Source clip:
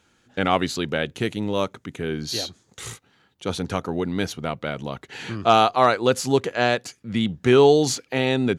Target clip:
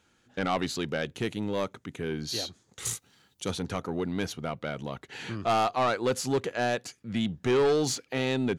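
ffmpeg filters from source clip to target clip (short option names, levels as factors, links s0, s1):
-filter_complex "[0:a]asettb=1/sr,asplit=3[s0][s1][s2];[s0]atrim=end=2.854[s3];[s1]atrim=start=2.85:end=3.51,asetpts=PTS-STARTPTS,afade=t=in:d=0.004:c=qsin,afade=t=out:st=0.656:d=0.004:c=qsin,bass=f=250:g=3,treble=f=4000:g=14[s4];[s2]atrim=start=3.506[s5];[s3][s4]acrossfade=d=0.004:c1=hsin:c2=qsin[s6];[s6][s5]acrossfade=d=0.004:c1=qsin:c2=hsin,asoftclip=type=tanh:threshold=0.178,volume=0.596"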